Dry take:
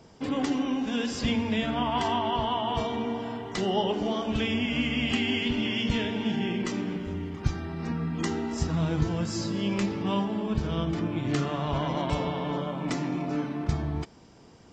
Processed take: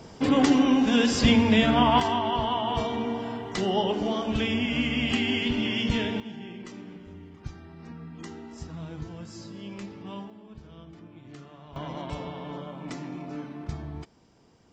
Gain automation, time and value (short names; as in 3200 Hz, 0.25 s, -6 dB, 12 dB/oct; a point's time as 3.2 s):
+7.5 dB
from 2 s +1 dB
from 6.2 s -11.5 dB
from 10.3 s -18.5 dB
from 11.76 s -7 dB